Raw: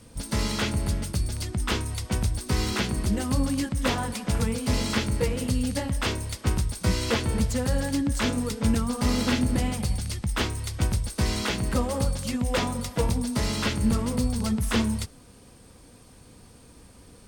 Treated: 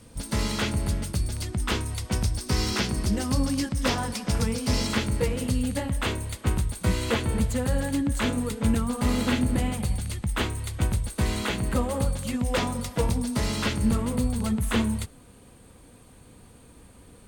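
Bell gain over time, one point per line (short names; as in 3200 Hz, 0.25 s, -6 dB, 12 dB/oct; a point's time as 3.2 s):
bell 5300 Hz 0.44 oct
-2 dB
from 2.13 s +5 dB
from 4.87 s -3.5 dB
from 5.61 s -10 dB
from 12.34 s -3 dB
from 13.93 s -10.5 dB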